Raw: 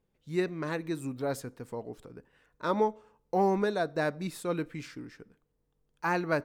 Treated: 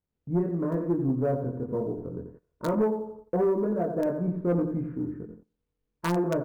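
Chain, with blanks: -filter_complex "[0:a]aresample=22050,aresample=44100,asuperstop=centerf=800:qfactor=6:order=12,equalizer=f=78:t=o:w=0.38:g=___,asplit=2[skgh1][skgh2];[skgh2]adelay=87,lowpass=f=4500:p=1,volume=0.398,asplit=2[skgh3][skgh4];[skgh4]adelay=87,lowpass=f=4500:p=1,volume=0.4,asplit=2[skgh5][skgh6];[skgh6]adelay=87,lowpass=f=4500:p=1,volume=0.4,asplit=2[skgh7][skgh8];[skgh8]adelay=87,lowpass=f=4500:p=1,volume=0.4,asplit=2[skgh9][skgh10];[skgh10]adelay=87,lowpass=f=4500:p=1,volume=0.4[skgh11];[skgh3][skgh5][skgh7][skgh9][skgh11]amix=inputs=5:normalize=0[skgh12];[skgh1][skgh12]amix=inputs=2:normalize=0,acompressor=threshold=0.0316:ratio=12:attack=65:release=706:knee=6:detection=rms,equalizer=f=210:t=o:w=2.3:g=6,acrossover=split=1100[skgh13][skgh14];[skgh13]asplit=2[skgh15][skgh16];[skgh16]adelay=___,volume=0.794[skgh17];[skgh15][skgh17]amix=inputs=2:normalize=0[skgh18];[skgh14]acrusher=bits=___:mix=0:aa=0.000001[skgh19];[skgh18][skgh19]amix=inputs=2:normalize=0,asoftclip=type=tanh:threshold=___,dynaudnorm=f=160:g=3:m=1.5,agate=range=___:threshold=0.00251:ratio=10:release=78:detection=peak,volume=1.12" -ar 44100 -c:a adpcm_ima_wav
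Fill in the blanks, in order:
10, 23, 4, 0.0794, 0.126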